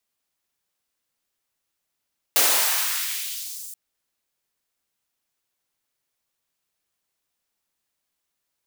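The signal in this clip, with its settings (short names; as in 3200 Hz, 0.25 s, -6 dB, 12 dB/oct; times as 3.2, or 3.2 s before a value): swept filtered noise white, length 1.38 s highpass, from 370 Hz, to 8200 Hz, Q 1.2, exponential, gain ramp -21 dB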